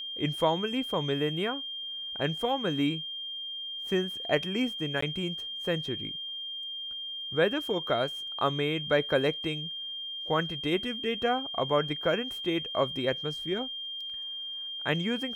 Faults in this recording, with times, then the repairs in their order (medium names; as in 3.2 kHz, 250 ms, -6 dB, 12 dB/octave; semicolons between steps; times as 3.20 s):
whine 3.2 kHz -35 dBFS
5.01–5.02 s: dropout 14 ms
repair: band-stop 3.2 kHz, Q 30; interpolate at 5.01 s, 14 ms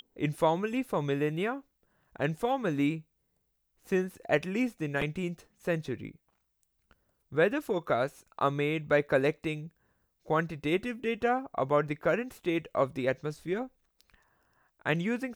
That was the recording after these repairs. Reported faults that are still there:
nothing left